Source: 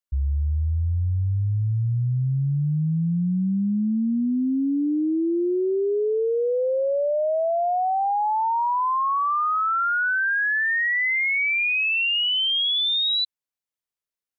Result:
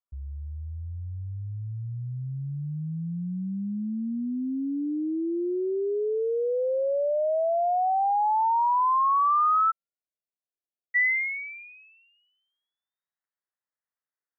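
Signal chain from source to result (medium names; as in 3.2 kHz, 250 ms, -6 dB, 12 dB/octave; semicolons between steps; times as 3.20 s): steep low-pass 1.4 kHz 96 dB/octave, from 9.70 s 730 Hz, from 10.94 s 2 kHz; tilt EQ +3.5 dB/octave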